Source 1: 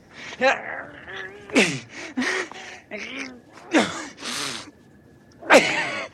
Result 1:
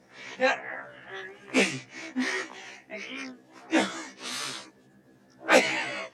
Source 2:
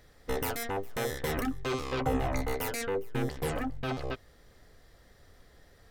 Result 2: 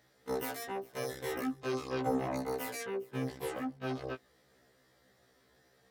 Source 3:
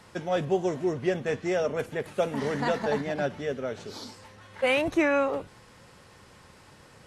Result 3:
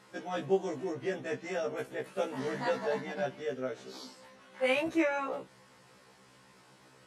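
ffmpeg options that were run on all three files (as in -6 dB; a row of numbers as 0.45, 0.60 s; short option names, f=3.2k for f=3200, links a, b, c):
-af "highpass=150,afftfilt=real='re*1.73*eq(mod(b,3),0)':imag='im*1.73*eq(mod(b,3),0)':win_size=2048:overlap=0.75,volume=-3dB"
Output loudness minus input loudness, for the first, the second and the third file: -5.5, -4.0, -6.0 LU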